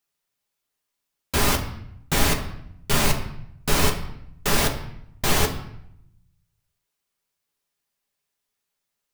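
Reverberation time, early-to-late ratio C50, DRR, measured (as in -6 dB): 0.75 s, 10.0 dB, 2.0 dB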